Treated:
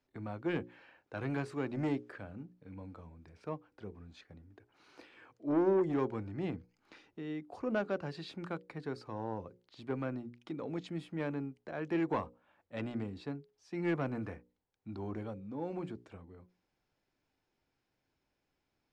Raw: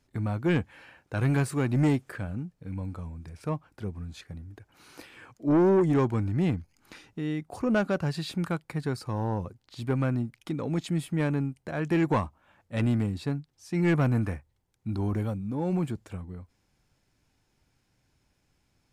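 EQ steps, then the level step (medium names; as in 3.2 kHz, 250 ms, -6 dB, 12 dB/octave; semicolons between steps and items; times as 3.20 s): three-band isolator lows -17 dB, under 300 Hz, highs -21 dB, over 5.9 kHz; bass shelf 390 Hz +10.5 dB; hum notches 60/120/180/240/300/360/420/480/540 Hz; -9.0 dB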